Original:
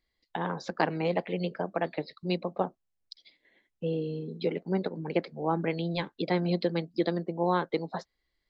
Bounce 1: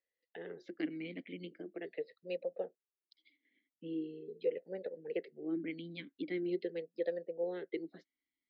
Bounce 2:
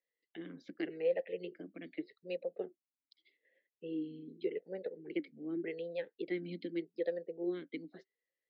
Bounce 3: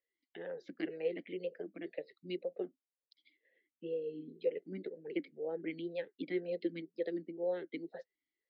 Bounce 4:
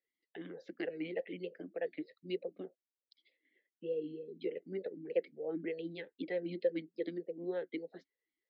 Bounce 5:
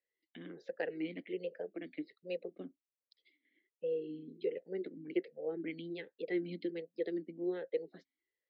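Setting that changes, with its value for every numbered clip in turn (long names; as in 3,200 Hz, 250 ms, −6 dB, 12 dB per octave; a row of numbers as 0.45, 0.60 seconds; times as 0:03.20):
formant filter swept between two vowels, speed: 0.42, 0.84, 2, 3.3, 1.3 Hertz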